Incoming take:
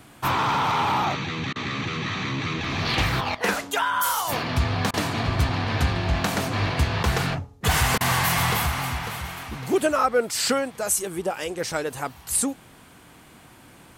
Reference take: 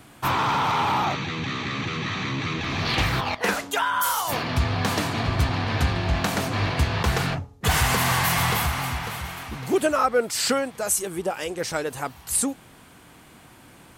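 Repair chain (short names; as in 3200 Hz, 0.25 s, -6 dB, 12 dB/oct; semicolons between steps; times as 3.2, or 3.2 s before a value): interpolate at 1.53/4.91/7.98, 26 ms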